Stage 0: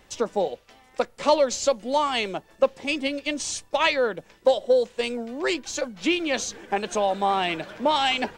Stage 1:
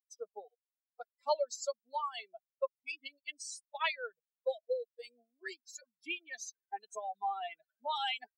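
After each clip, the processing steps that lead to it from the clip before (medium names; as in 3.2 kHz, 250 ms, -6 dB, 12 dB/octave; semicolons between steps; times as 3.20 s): expander on every frequency bin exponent 3; high-pass 520 Hz 24 dB/octave; trim -7.5 dB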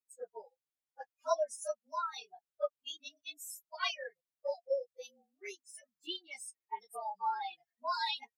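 frequency axis rescaled in octaves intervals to 110%; trim +2.5 dB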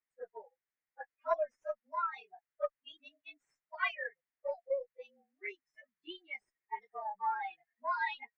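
Chebyshev shaper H 4 -28 dB, 6 -31 dB, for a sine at -18.5 dBFS; four-pole ladder low-pass 2.2 kHz, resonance 60%; trim +9 dB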